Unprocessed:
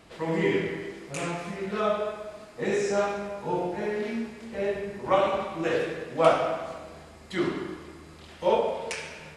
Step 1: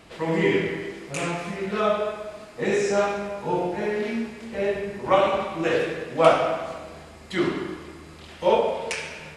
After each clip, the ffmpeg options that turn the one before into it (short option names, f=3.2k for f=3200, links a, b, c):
-af "equalizer=f=2.6k:t=o:w=0.77:g=2,volume=3.5dB"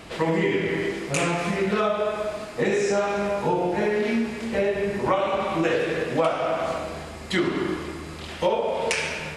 -af "acompressor=threshold=-27dB:ratio=8,volume=7.5dB"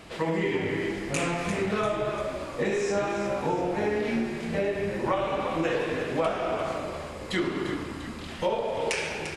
-filter_complex "[0:a]asplit=7[a][b][c][d][e][f][g];[b]adelay=346,afreqshift=-63,volume=-9.5dB[h];[c]adelay=692,afreqshift=-126,volume=-15.3dB[i];[d]adelay=1038,afreqshift=-189,volume=-21.2dB[j];[e]adelay=1384,afreqshift=-252,volume=-27dB[k];[f]adelay=1730,afreqshift=-315,volume=-32.9dB[l];[g]adelay=2076,afreqshift=-378,volume=-38.7dB[m];[a][h][i][j][k][l][m]amix=inputs=7:normalize=0,volume=-4.5dB"